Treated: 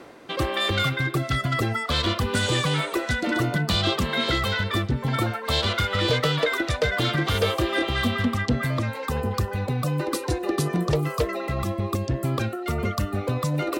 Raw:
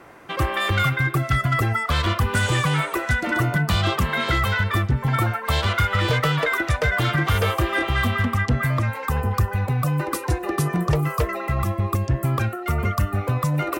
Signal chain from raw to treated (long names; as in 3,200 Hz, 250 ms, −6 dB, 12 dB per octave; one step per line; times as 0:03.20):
graphic EQ with 10 bands 250 Hz +8 dB, 500 Hz +7 dB, 4,000 Hz +11 dB, 8,000 Hz +4 dB
reversed playback
upward compression, threshold −29 dBFS
reversed playback
level −6.5 dB